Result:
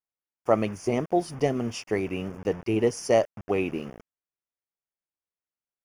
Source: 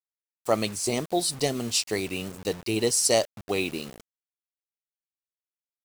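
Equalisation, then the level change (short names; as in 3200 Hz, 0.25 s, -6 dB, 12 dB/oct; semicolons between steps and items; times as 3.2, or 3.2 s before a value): running mean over 11 samples; +2.5 dB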